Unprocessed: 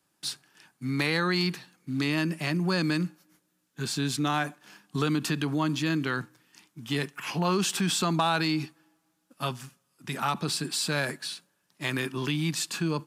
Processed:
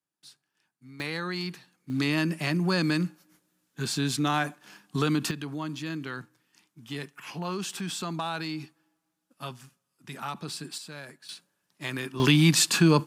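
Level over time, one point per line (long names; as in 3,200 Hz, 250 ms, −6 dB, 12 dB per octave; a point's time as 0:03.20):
−18 dB
from 0:01.00 −6.5 dB
from 0:01.90 +1 dB
from 0:05.31 −7 dB
from 0:10.78 −14 dB
from 0:11.29 −3.5 dB
from 0:12.20 +9 dB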